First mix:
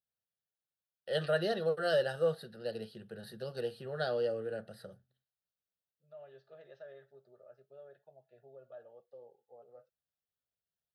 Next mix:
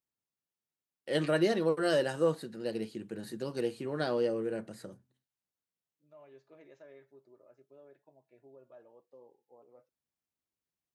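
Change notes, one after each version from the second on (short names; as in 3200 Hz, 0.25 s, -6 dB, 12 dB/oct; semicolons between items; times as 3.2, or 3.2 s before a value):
second voice -5.0 dB; master: remove fixed phaser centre 1500 Hz, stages 8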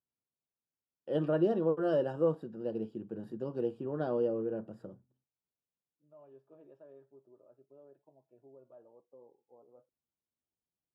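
master: add running mean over 21 samples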